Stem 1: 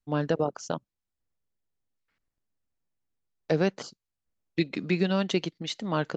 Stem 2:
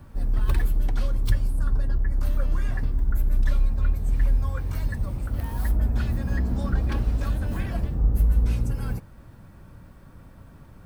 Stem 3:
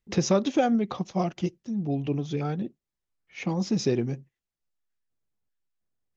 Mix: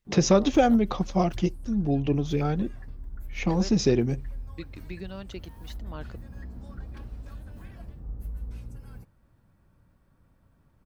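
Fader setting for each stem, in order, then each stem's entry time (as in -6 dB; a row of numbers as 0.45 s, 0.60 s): -14.0 dB, -16.0 dB, +3.0 dB; 0.00 s, 0.05 s, 0.00 s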